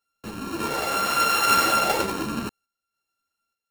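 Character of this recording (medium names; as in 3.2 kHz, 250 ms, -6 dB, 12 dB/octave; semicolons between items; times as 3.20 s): a buzz of ramps at a fixed pitch in blocks of 32 samples; random-step tremolo 3.4 Hz; a shimmering, thickened sound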